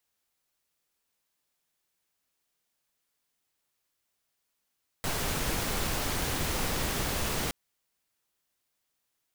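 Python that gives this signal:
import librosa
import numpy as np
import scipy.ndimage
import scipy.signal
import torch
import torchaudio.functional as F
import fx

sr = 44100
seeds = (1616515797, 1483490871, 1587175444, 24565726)

y = fx.noise_colour(sr, seeds[0], length_s=2.47, colour='pink', level_db=-30.5)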